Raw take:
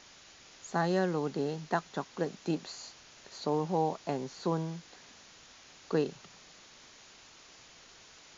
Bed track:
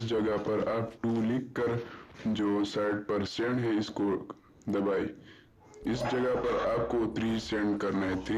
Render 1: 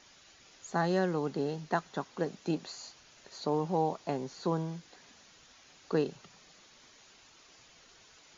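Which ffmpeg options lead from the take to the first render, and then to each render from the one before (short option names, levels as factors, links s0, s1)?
-af "afftdn=nr=6:nf=-56"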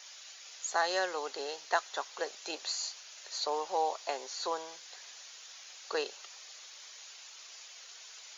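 -af "highpass=f=500:w=0.5412,highpass=f=500:w=1.3066,highshelf=f=2200:g=12"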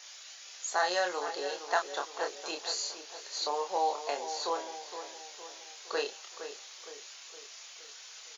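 -filter_complex "[0:a]asplit=2[s0][s1];[s1]adelay=28,volume=0.596[s2];[s0][s2]amix=inputs=2:normalize=0,asplit=2[s3][s4];[s4]adelay=464,lowpass=f=2000:p=1,volume=0.335,asplit=2[s5][s6];[s6]adelay=464,lowpass=f=2000:p=1,volume=0.51,asplit=2[s7][s8];[s8]adelay=464,lowpass=f=2000:p=1,volume=0.51,asplit=2[s9][s10];[s10]adelay=464,lowpass=f=2000:p=1,volume=0.51,asplit=2[s11][s12];[s12]adelay=464,lowpass=f=2000:p=1,volume=0.51,asplit=2[s13][s14];[s14]adelay=464,lowpass=f=2000:p=1,volume=0.51[s15];[s3][s5][s7][s9][s11][s13][s15]amix=inputs=7:normalize=0"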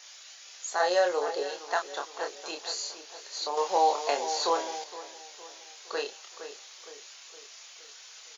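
-filter_complex "[0:a]asettb=1/sr,asplit=3[s0][s1][s2];[s0]atrim=end=0.804[s3];[s1]atrim=start=0.8:end=1.43,asetpts=PTS-STARTPTS,afade=t=in:d=0.004:c=qsin,afade=t=out:st=0.626:d=0.004:c=qsin,equalizer=f=500:w=1.5:g=9.5[s4];[s2]atrim=start=1.426[s5];[s3][s4]acrossfade=d=0.004:c1=hsin:c2=qsin[s6];[s6][s5]acrossfade=d=0.004:c1=qsin:c2=hsin,asettb=1/sr,asplit=3[s7][s8][s9];[s7]atrim=end=3.574[s10];[s8]atrim=start=3.57:end=4.84,asetpts=PTS-STARTPTS,afade=t=in:d=0.004:c=qsin,afade=t=out:st=1.266:d=0.004:c=qsin,acontrast=57[s11];[s9]atrim=start=4.836[s12];[s10][s11]acrossfade=d=0.004:c1=hsin:c2=qsin[s13];[s13][s12]acrossfade=d=0.004:c1=qsin:c2=hsin"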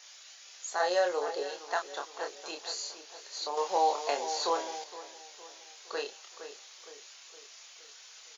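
-af "volume=0.708"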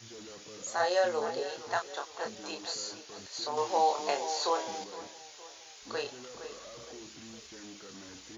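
-filter_complex "[1:a]volume=0.1[s0];[0:a][s0]amix=inputs=2:normalize=0"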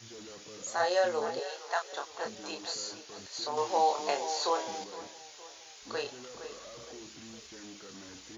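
-filter_complex "[0:a]asettb=1/sr,asplit=3[s0][s1][s2];[s0]atrim=end=1.394[s3];[s1]atrim=start=1.39:end=1.93,asetpts=PTS-STARTPTS,afade=t=in:d=0.004:c=qsin,afade=t=out:st=0.536:d=0.004:c=qsin,highpass=f=460:w=0.5412,highpass=f=460:w=1.3066[s4];[s2]atrim=start=1.926[s5];[s3][s4]acrossfade=d=0.004:c1=hsin:c2=qsin[s6];[s6][s5]acrossfade=d=0.004:c1=qsin:c2=hsin"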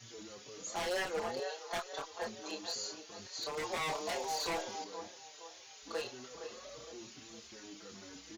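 -filter_complex "[0:a]aeval=exprs='0.0398*(abs(mod(val(0)/0.0398+3,4)-2)-1)':c=same,asplit=2[s0][s1];[s1]adelay=4.9,afreqshift=2.1[s2];[s0][s2]amix=inputs=2:normalize=1"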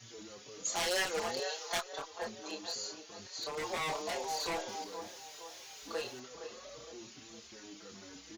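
-filter_complex "[0:a]asettb=1/sr,asplit=3[s0][s1][s2];[s0]atrim=end=0.654[s3];[s1]atrim=start=0.65:end=1.81,asetpts=PTS-STARTPTS,afade=t=in:d=0.004:c=qsin,afade=t=out:st=1.156:d=0.004:c=qsin,highshelf=f=2200:g=9.5[s4];[s2]atrim=start=1.806[s5];[s3][s4]acrossfade=d=0.004:c1=hsin:c2=qsin[s6];[s6][s5]acrossfade=d=0.004:c1=qsin:c2=hsin,asettb=1/sr,asplit=3[s7][s8][s9];[s7]atrim=end=3.614[s10];[s8]atrim=start=3.61:end=4.02,asetpts=PTS-STARTPTS,afade=t=in:d=0.004:c=qsin,afade=t=out:st=0.406:d=0.004:c=qsin,aeval=exprs='val(0)+0.5*0.00224*sgn(val(0))':c=same[s11];[s9]atrim=start=4.016[s12];[s10][s11]acrossfade=d=0.004:c1=hsin:c2=qsin[s13];[s13][s12]acrossfade=d=0.004:c1=qsin:c2=hsin,asettb=1/sr,asplit=3[s14][s15][s16];[s14]atrim=end=4.684[s17];[s15]atrim=start=4.68:end=6.2,asetpts=PTS-STARTPTS,afade=t=in:d=0.004:c=qsin,afade=t=out:st=1.516:d=0.004:c=qsin,aeval=exprs='val(0)+0.5*0.00251*sgn(val(0))':c=same[s18];[s16]atrim=start=6.196[s19];[s17][s18]acrossfade=d=0.004:c1=hsin:c2=qsin[s20];[s20][s19]acrossfade=d=0.004:c1=qsin:c2=hsin"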